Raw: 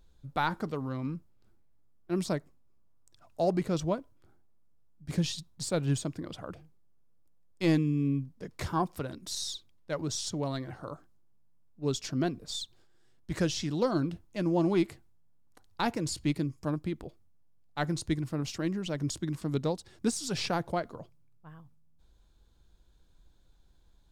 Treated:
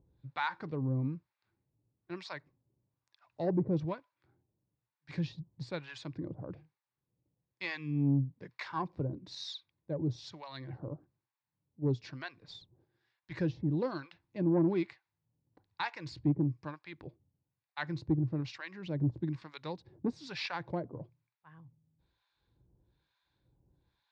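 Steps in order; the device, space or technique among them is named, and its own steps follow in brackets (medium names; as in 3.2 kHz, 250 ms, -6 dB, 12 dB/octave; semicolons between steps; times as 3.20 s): guitar amplifier with harmonic tremolo (harmonic tremolo 1.1 Hz, depth 100%, crossover 810 Hz; saturation -22.5 dBFS, distortion -19 dB; cabinet simulation 100–3800 Hz, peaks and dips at 120 Hz +6 dB, 220 Hz -7 dB, 450 Hz -4 dB, 680 Hz -8 dB, 1.3 kHz -8 dB, 3.1 kHz -9 dB); 9.93–12.06 s: dynamic bell 1.4 kHz, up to -4 dB, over -58 dBFS, Q 0.93; trim +4 dB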